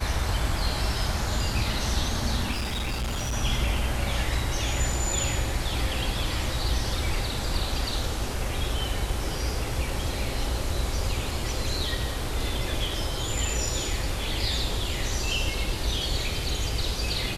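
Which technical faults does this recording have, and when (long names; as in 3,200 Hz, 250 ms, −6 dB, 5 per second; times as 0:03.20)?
0:02.51–0:03.34: clipping −25.5 dBFS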